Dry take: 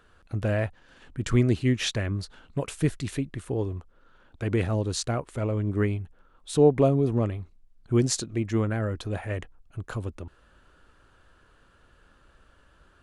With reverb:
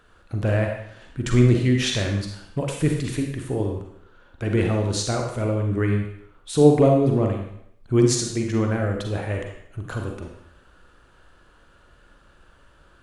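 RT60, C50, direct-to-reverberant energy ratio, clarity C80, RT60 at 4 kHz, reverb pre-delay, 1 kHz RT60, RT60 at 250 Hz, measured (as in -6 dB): 0.70 s, 4.0 dB, 1.5 dB, 6.5 dB, 0.70 s, 37 ms, 0.75 s, 0.70 s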